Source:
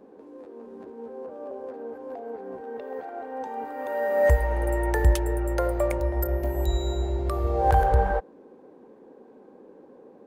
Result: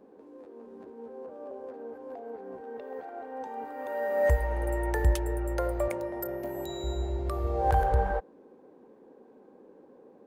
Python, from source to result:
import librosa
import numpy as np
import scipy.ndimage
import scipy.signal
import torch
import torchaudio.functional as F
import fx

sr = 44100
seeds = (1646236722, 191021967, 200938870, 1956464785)

y = fx.highpass(x, sr, hz=120.0, slope=24, at=(5.88, 6.84))
y = y * 10.0 ** (-4.5 / 20.0)